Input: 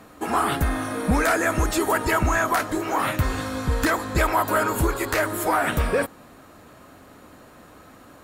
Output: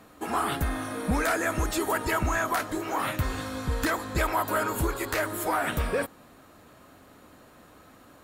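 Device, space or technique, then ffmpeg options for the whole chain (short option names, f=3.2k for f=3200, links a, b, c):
presence and air boost: -af "equalizer=f=3.5k:t=o:w=0.77:g=2,highshelf=f=12k:g=3.5,volume=-5.5dB"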